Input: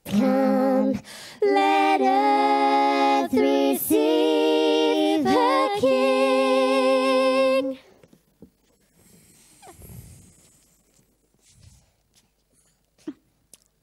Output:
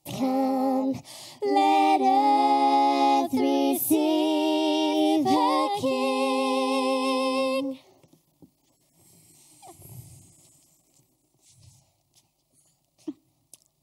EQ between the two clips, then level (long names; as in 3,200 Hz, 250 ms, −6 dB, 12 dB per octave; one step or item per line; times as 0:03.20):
high-pass filter 41 Hz
phaser with its sweep stopped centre 310 Hz, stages 8
0.0 dB